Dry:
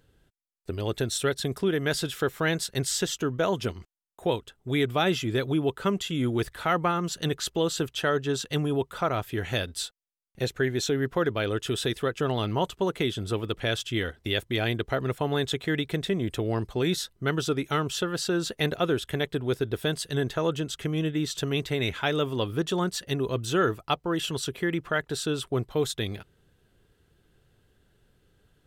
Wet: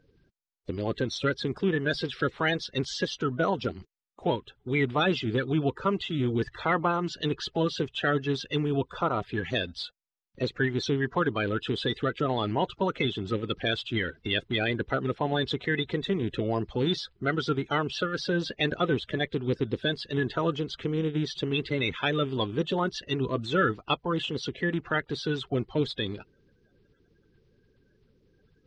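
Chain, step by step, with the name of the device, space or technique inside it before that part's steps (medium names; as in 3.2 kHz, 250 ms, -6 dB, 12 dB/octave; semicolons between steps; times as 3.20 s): clip after many re-uploads (low-pass 4.9 kHz 24 dB/octave; coarse spectral quantiser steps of 30 dB)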